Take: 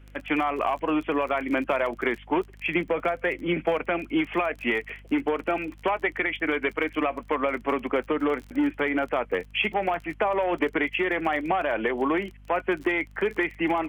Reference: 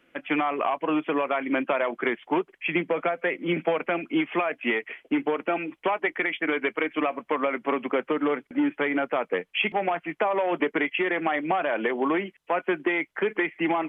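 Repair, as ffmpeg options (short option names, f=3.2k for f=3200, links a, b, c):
-af "adeclick=t=4,bandreject=f=50.4:t=h:w=4,bandreject=f=100.8:t=h:w=4,bandreject=f=151.2:t=h:w=4,bandreject=f=201.6:t=h:w=4,bandreject=f=252:t=h:w=4,agate=range=-21dB:threshold=-40dB"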